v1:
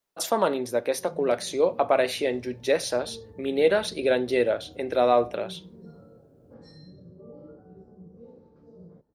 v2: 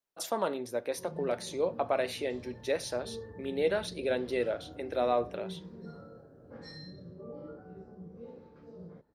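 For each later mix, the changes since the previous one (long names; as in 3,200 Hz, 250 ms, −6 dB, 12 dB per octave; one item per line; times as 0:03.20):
speech −8.0 dB
background: add parametric band 2,300 Hz +13 dB 1.9 octaves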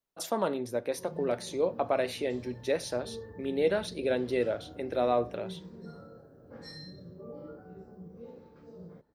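speech: add low-shelf EQ 230 Hz +9.5 dB
background: remove high-frequency loss of the air 70 metres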